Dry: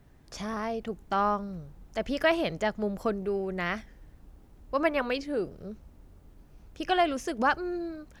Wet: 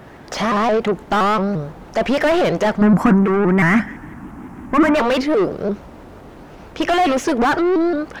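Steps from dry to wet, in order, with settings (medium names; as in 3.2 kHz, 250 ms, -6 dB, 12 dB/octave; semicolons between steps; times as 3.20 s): overdrive pedal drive 32 dB, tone 1.3 kHz, clips at -11.5 dBFS; 2.81–4.95 s: graphic EQ 125/250/500/1000/2000/4000/8000 Hz +4/+12/-12/+5/+5/-12/+3 dB; vibrato with a chosen wave saw up 5.8 Hz, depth 160 cents; trim +4 dB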